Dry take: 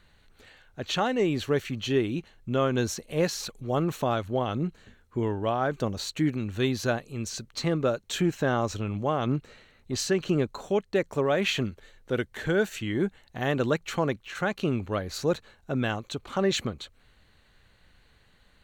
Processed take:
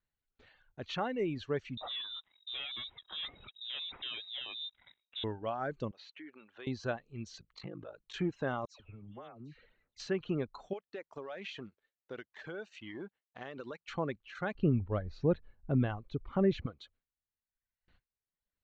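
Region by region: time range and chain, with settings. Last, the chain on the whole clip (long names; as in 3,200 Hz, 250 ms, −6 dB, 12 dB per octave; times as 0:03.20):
0:01.77–0:05.24: leveller curve on the samples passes 3 + downward compressor 1.5 to 1, threshold −46 dBFS + voice inversion scrambler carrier 3,800 Hz
0:05.91–0:06.67: band-pass filter 570–3,300 Hz + downward compressor 2.5 to 1, threshold −37 dBFS
0:07.38–0:08.14: downward compressor, threshold −32 dBFS + comb filter 6.3 ms, depth 46% + ring modulation 26 Hz
0:08.65–0:10.00: downward compressor 8 to 1, threshold −35 dBFS + all-pass dispersion lows, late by 146 ms, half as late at 1,600 Hz
0:10.73–0:13.88: mu-law and A-law mismatch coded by A + high-pass filter 390 Hz 6 dB per octave + downward compressor 4 to 1, threshold −30 dBFS
0:14.55–0:16.66: low-pass filter 6,100 Hz + spectral tilt −3.5 dB per octave
whole clip: noise gate with hold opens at −47 dBFS; reverb reduction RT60 1.2 s; Bessel low-pass filter 3,700 Hz, order 8; level −8 dB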